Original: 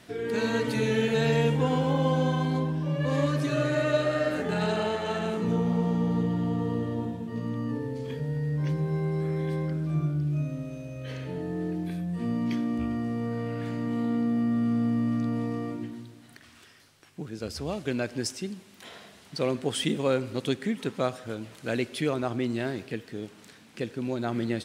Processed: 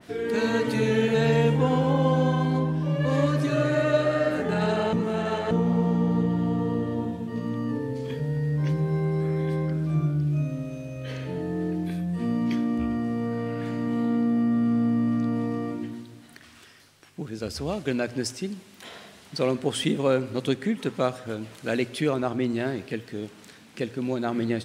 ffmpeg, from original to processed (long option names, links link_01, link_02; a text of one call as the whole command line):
ffmpeg -i in.wav -filter_complex "[0:a]asplit=3[link_01][link_02][link_03];[link_01]atrim=end=4.932[link_04];[link_02]atrim=start=4.928:end=5.512,asetpts=PTS-STARTPTS,areverse[link_05];[link_03]atrim=start=5.508[link_06];[link_04][link_05]acrossfade=duration=0.004:curve1=hsin:curve2=hsin[link_07];[link_07][link_06]acrossfade=duration=0.004:curve1=hsin:curve2=hsin,bandreject=frequency=60:width_type=h:width=6,bandreject=frequency=120:width_type=h:width=6,adynamicequalizer=threshold=0.00794:dfrequency=2100:dqfactor=0.7:tfrequency=2100:tqfactor=0.7:attack=5:release=100:ratio=0.375:range=2:mode=cutabove:tftype=highshelf,volume=3dB" out.wav